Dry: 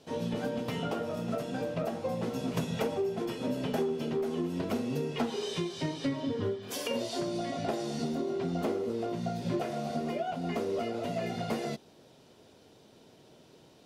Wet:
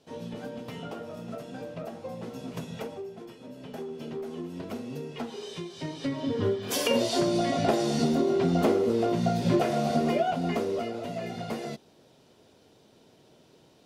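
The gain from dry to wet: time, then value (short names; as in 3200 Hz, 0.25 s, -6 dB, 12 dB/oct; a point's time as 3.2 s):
2.77 s -5 dB
3.47 s -12.5 dB
4.03 s -4.5 dB
5.68 s -4.5 dB
6.67 s +8 dB
10.2 s +8 dB
11.05 s -1 dB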